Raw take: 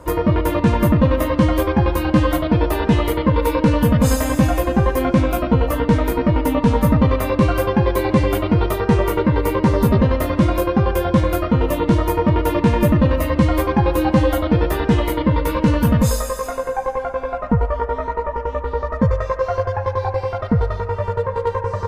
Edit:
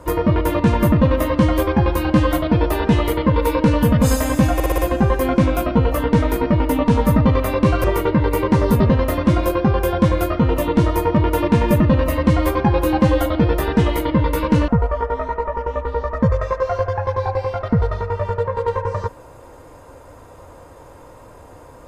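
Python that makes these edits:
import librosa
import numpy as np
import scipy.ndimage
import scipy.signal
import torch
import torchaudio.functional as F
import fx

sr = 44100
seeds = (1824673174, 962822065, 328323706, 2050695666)

y = fx.edit(x, sr, fx.stutter(start_s=4.54, slice_s=0.06, count=5),
    fx.cut(start_s=7.6, length_s=1.36),
    fx.cut(start_s=15.8, length_s=1.67), tone=tone)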